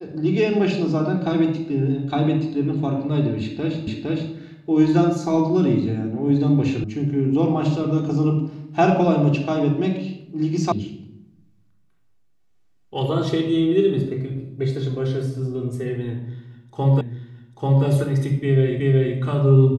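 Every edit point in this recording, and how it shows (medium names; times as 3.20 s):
3.87 s: repeat of the last 0.46 s
6.84 s: sound stops dead
10.72 s: sound stops dead
17.01 s: repeat of the last 0.84 s
18.80 s: repeat of the last 0.37 s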